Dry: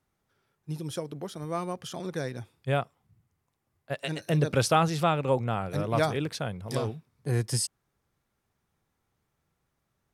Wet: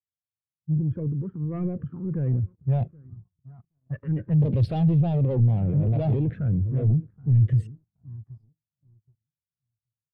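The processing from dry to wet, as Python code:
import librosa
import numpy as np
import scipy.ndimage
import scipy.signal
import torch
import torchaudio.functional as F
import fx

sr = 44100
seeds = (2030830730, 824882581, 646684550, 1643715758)

p1 = fx.env_lowpass(x, sr, base_hz=360.0, full_db=-21.5)
p2 = fx.transient(p1, sr, attack_db=-1, sustain_db=11)
p3 = fx.spacing_loss(p2, sr, db_at_10k=24)
p4 = fx.tube_stage(p3, sr, drive_db=28.0, bias=0.55)
p5 = p4 + fx.echo_filtered(p4, sr, ms=775, feedback_pct=34, hz=1000.0, wet_db=-17.0, dry=0)
p6 = fx.env_phaser(p5, sr, low_hz=450.0, high_hz=3200.0, full_db=-22.5)
p7 = scipy.signal.sosfilt(scipy.signal.butter(4, 64.0, 'highpass', fs=sr, output='sos'), p6)
p8 = fx.leveller(p7, sr, passes=2)
p9 = fx.low_shelf(p8, sr, hz=110.0, db=10.0)
p10 = fx.spectral_expand(p9, sr, expansion=1.5)
y = F.gain(torch.from_numpy(p10), 6.0).numpy()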